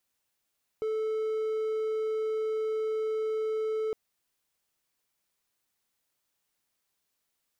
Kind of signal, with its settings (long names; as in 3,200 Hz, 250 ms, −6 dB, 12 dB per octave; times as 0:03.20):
tone triangle 437 Hz −25.5 dBFS 3.11 s